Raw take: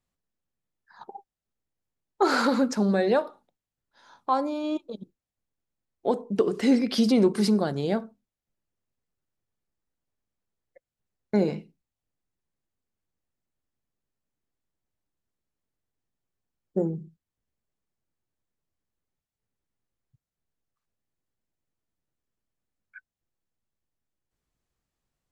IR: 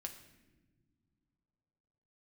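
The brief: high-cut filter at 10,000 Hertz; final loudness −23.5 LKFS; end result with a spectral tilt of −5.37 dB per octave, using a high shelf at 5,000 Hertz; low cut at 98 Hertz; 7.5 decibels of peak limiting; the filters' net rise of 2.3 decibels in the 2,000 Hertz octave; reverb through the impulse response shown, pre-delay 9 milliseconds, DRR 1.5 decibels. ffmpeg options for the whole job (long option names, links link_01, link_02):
-filter_complex "[0:a]highpass=98,lowpass=10000,equalizer=frequency=2000:width_type=o:gain=4,highshelf=frequency=5000:gain=-5.5,alimiter=limit=-17.5dB:level=0:latency=1,asplit=2[link_01][link_02];[1:a]atrim=start_sample=2205,adelay=9[link_03];[link_02][link_03]afir=irnorm=-1:irlink=0,volume=1.5dB[link_04];[link_01][link_04]amix=inputs=2:normalize=0,volume=2.5dB"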